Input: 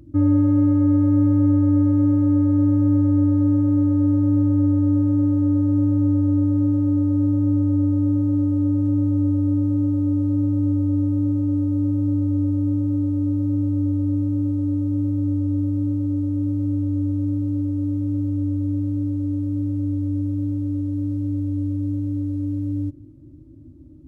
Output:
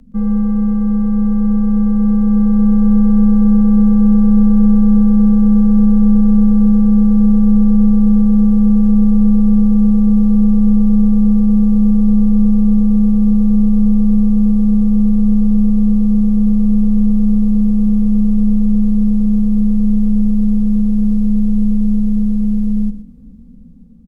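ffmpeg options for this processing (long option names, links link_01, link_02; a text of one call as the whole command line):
ffmpeg -i in.wav -af "afreqshift=-82,aecho=1:1:120:0.251,dynaudnorm=framelen=950:gausssize=5:maxgain=10dB,volume=1.5dB" out.wav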